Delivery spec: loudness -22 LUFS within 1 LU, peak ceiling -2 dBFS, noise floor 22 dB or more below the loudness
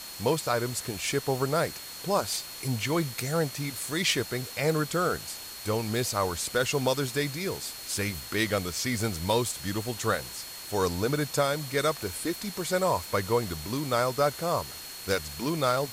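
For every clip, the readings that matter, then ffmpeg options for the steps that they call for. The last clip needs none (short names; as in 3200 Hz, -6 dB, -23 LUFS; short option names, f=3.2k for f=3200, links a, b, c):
steady tone 4300 Hz; tone level -44 dBFS; noise floor -42 dBFS; noise floor target -51 dBFS; loudness -29.0 LUFS; peak -12.0 dBFS; loudness target -22.0 LUFS
-> -af "bandreject=f=4.3k:w=30"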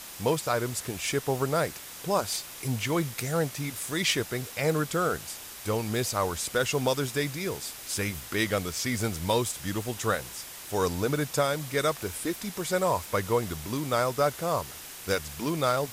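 steady tone none; noise floor -43 dBFS; noise floor target -51 dBFS
-> -af "afftdn=nr=8:nf=-43"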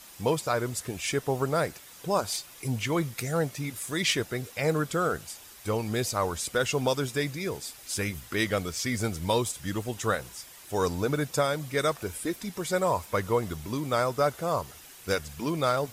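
noise floor -49 dBFS; noise floor target -52 dBFS
-> -af "afftdn=nr=6:nf=-49"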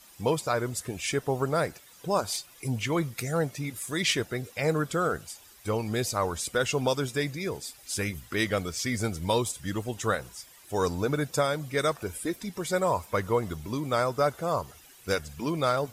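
noise floor -54 dBFS; loudness -29.5 LUFS; peak -12.5 dBFS; loudness target -22.0 LUFS
-> -af "volume=7.5dB"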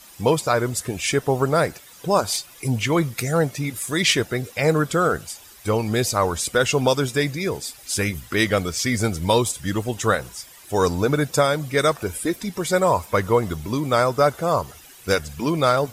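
loudness -22.0 LUFS; peak -5.0 dBFS; noise floor -46 dBFS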